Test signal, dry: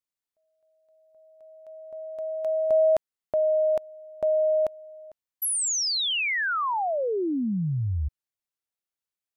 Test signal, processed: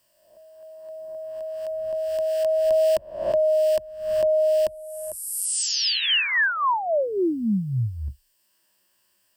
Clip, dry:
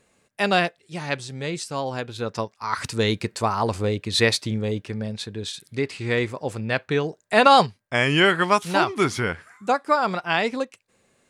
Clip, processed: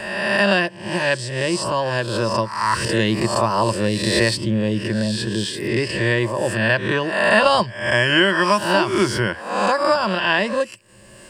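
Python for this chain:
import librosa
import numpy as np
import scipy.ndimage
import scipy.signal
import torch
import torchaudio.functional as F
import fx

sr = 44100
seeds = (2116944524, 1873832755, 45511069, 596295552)

y = fx.spec_swells(x, sr, rise_s=0.73)
y = fx.ripple_eq(y, sr, per_octave=1.3, db=11)
y = fx.band_squash(y, sr, depth_pct=70)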